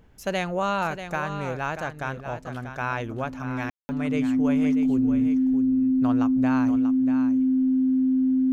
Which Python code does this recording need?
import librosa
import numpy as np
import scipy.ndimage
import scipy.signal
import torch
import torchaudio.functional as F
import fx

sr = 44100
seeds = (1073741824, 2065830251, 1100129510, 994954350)

y = fx.notch(x, sr, hz=260.0, q=30.0)
y = fx.fix_ambience(y, sr, seeds[0], print_start_s=0.0, print_end_s=0.5, start_s=3.7, end_s=3.89)
y = fx.fix_echo_inverse(y, sr, delay_ms=638, level_db=-9.5)